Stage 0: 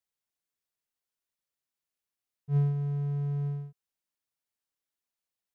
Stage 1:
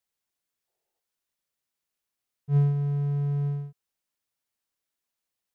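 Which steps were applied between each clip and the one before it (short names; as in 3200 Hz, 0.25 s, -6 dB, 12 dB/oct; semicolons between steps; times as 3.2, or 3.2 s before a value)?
spectral gain 0.68–1, 340–920 Hz +12 dB; gain +4 dB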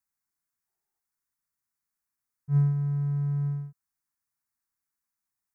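fixed phaser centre 1300 Hz, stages 4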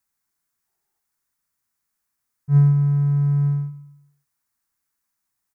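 feedback echo 0.132 s, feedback 40%, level -16 dB; gain +8 dB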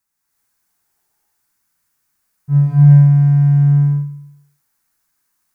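in parallel at -9.5 dB: one-sided clip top -26 dBFS, bottom -13.5 dBFS; on the sum: non-linear reverb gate 0.39 s rising, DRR -7.5 dB; gain -1 dB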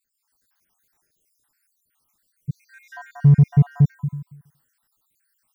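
random spectral dropouts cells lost 67%; in parallel at -8.5 dB: overloaded stage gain 18 dB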